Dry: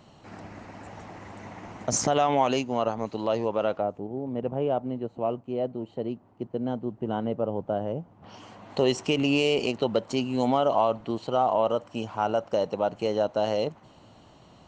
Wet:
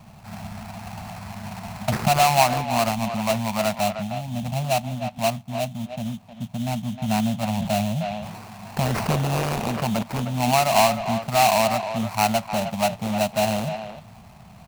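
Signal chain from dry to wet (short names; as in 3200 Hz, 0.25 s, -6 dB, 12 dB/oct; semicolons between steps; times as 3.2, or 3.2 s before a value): elliptic band-stop 220–670 Hz; treble ducked by the level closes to 2100 Hz, closed at -20 dBFS; tilt shelf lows +4 dB, about 860 Hz; sample-rate reducer 3400 Hz, jitter 20%; speakerphone echo 0.31 s, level -8 dB; 7.49–10.03 sustainer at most 37 dB/s; gain +7 dB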